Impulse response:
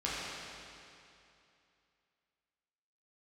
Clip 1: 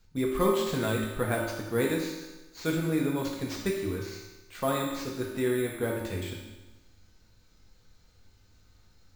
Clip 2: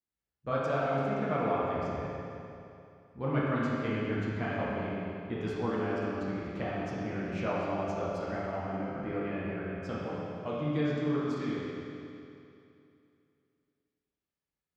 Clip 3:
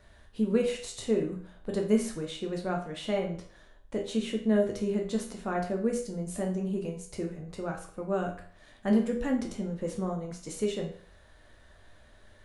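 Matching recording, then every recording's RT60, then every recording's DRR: 2; 1.1, 2.7, 0.50 seconds; −3.0, −8.5, 0.5 decibels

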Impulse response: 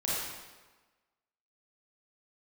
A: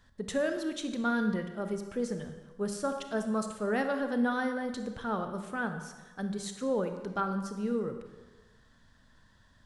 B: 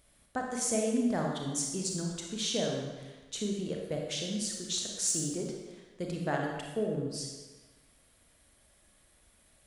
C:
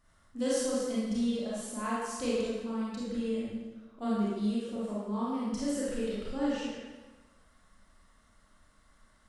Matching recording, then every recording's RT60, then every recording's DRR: C; 1.3, 1.3, 1.3 seconds; 6.5, 0.0, −8.0 decibels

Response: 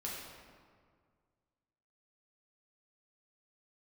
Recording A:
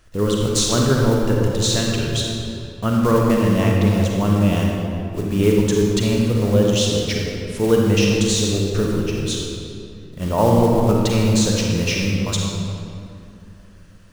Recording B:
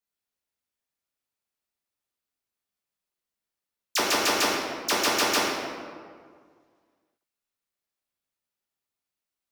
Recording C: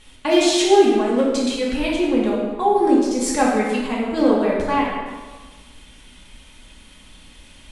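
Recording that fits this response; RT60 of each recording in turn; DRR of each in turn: B; 2.7, 1.9, 1.4 seconds; −2.0, −5.0, −5.5 decibels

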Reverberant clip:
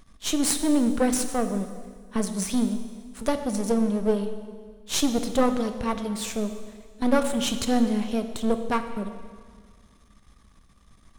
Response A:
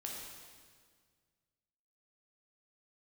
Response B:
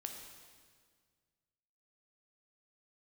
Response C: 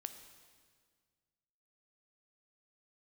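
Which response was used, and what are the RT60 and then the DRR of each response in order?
C; 1.8, 1.8, 1.8 seconds; −2.0, 3.0, 8.0 decibels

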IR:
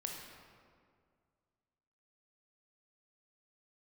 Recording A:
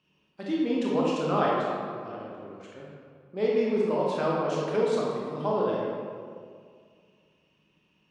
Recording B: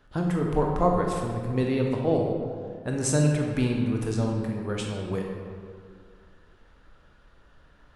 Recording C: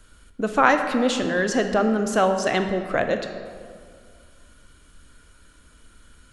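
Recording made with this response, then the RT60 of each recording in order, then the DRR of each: B; 2.1, 2.1, 2.1 seconds; −4.5, 0.5, 6.5 decibels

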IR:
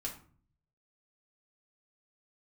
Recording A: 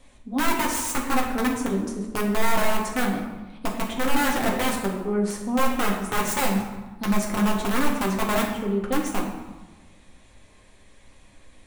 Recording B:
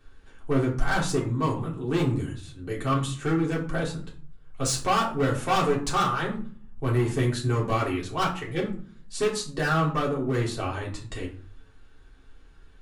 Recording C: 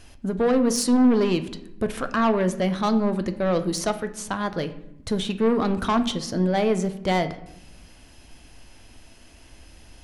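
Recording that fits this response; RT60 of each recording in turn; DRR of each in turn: B; 1.2, 0.45, 0.90 seconds; −2.0, −3.5, 9.0 decibels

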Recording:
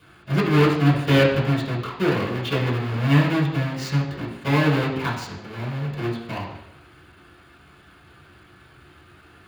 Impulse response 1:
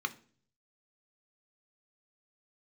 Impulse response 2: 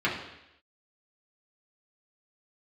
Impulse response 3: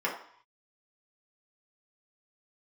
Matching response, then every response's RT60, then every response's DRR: 2; 0.45 s, 0.85 s, non-exponential decay; 7.5, −6.5, −4.5 decibels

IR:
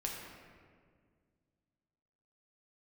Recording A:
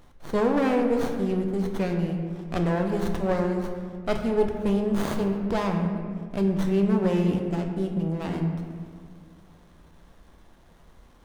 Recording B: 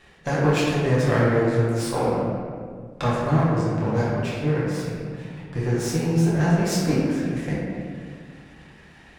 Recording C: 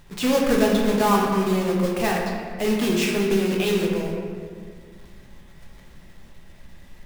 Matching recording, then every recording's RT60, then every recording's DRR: C; 1.9, 1.9, 1.9 seconds; 3.0, −8.5, −2.0 decibels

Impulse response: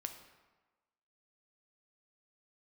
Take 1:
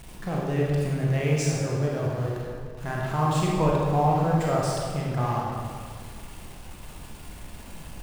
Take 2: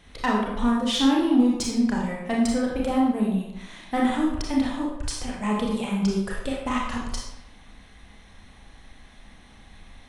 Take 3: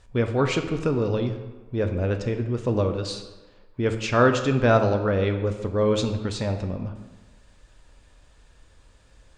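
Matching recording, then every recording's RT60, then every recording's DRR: 3; 1.9, 0.85, 1.3 seconds; −4.0, −3.0, 6.0 decibels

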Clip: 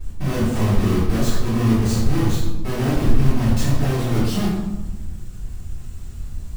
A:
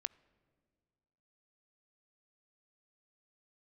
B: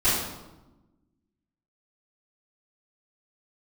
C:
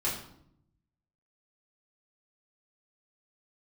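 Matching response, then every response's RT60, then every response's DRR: B; 2.0, 1.1, 0.70 seconds; 20.0, −16.5, −6.5 decibels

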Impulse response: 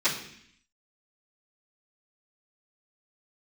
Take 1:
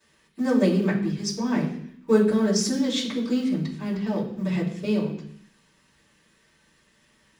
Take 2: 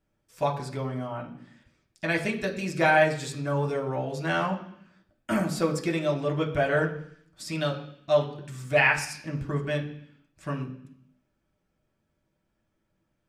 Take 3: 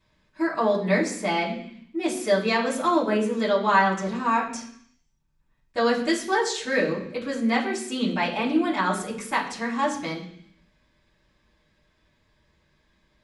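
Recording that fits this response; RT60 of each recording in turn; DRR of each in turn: 1; 0.65, 0.65, 0.65 seconds; −19.0, −1.0, −9.5 decibels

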